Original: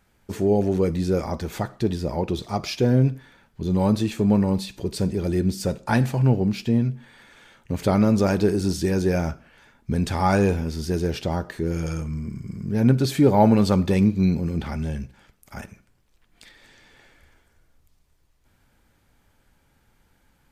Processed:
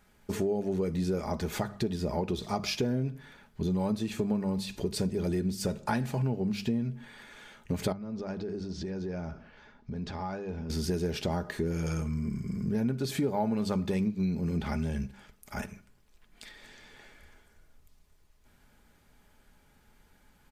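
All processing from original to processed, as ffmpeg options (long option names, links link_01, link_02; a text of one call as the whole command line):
ffmpeg -i in.wav -filter_complex "[0:a]asettb=1/sr,asplit=3[link_01][link_02][link_03];[link_01]atrim=end=7.924[link_04];[link_02]atrim=start=7.92:end=10.7,asetpts=PTS-STARTPTS,afade=type=in:duration=0.004:curve=qsin,afade=type=out:start_time=2.776:duration=0.004:curve=qsin,lowpass=frequency=5200:width=0.5412,lowpass=frequency=5200:width=1.3066,equalizer=frequency=2700:width_type=o:width=1.7:gain=-4.5,acompressor=threshold=-33dB:ratio=8:attack=3.2:release=140:knee=1:detection=peak[link_05];[link_03]atrim=start=10.696[link_06];[link_04][link_05]acrossfade=duration=0.004:curve1=hsin:curve2=qsin[link_07];[link_07][link_06]acrossfade=duration=0.004:curve1=qsin:curve2=hsin,bandreject=frequency=50:width_type=h:width=6,bandreject=frequency=100:width_type=h:width=6,bandreject=frequency=150:width_type=h:width=6,bandreject=frequency=200:width_type=h:width=6,aecho=1:1:4.8:0.32,acompressor=threshold=-27dB:ratio=6" out.wav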